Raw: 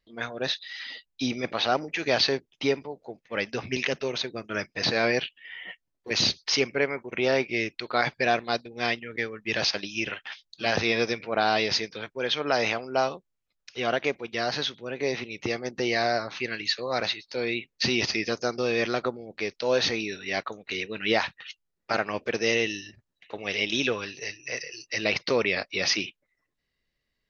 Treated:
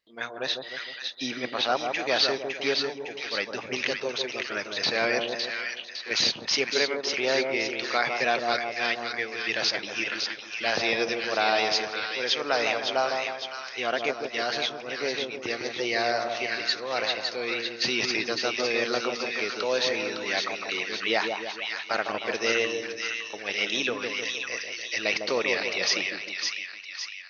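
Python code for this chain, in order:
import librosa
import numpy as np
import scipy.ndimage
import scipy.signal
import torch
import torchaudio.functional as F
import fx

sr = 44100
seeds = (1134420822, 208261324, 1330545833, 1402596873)

y = fx.highpass(x, sr, hz=450.0, slope=6)
y = fx.echo_split(y, sr, split_hz=1200.0, low_ms=154, high_ms=558, feedback_pct=52, wet_db=-4.5)
y = fx.band_squash(y, sr, depth_pct=40, at=(18.1, 20.83))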